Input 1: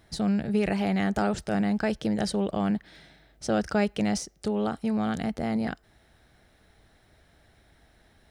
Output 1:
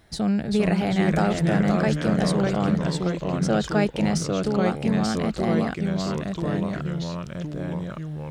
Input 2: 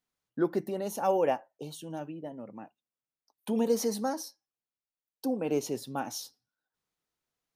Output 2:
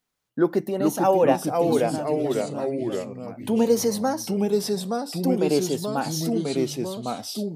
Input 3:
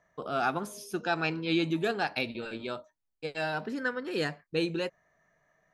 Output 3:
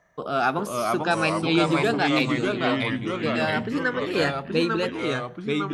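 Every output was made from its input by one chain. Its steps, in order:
ever faster or slower copies 376 ms, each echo -2 st, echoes 3; normalise loudness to -24 LUFS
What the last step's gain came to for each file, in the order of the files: +2.5 dB, +7.0 dB, +6.0 dB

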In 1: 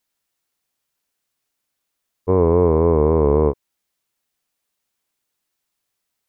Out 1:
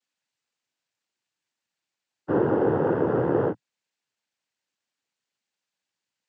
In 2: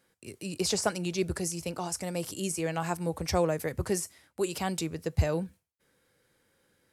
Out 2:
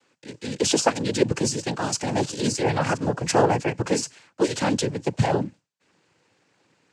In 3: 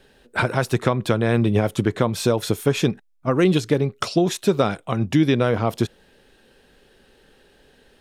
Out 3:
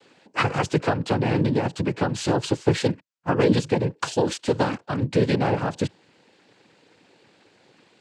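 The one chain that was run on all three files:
gain riding within 4 dB 2 s; noise-vocoded speech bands 8; normalise loudness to -24 LUFS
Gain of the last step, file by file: -5.5 dB, +8.5 dB, -2.0 dB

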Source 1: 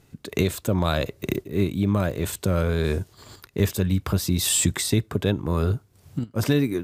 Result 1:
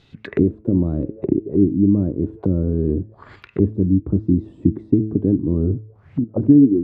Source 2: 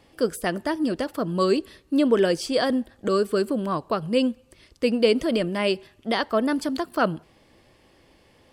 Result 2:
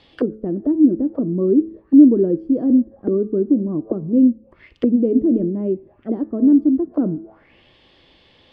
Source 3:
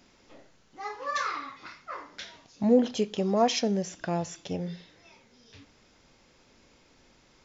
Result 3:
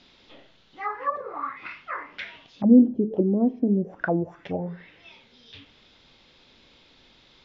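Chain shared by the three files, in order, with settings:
de-hum 108.2 Hz, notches 25; touch-sensitive low-pass 300–3900 Hz down, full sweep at -24.5 dBFS; trim +1.5 dB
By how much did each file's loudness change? +5.0 LU, +6.5 LU, +5.0 LU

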